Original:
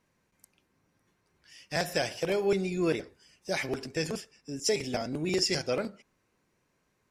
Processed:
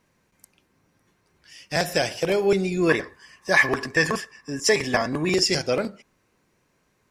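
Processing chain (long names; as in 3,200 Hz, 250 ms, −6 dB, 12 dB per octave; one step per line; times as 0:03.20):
0:02.89–0:05.34: hollow resonant body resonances 1,100/1,700 Hz, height 18 dB, ringing for 20 ms
level +6.5 dB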